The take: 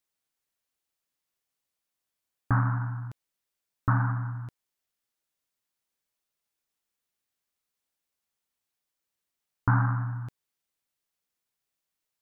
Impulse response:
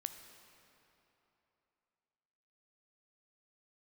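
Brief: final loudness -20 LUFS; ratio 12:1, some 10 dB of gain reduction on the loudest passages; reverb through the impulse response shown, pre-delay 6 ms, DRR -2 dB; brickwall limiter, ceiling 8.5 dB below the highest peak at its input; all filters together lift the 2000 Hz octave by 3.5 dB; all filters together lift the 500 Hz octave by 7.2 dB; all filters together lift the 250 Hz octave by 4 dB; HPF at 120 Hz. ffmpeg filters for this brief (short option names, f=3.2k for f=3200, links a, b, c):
-filter_complex "[0:a]highpass=120,equalizer=f=250:t=o:g=3.5,equalizer=f=500:t=o:g=9,equalizer=f=2k:t=o:g=4.5,acompressor=threshold=-28dB:ratio=12,alimiter=limit=-24dB:level=0:latency=1,asplit=2[a][b];[1:a]atrim=start_sample=2205,adelay=6[c];[b][c]afir=irnorm=-1:irlink=0,volume=4dB[d];[a][d]amix=inputs=2:normalize=0,volume=15dB"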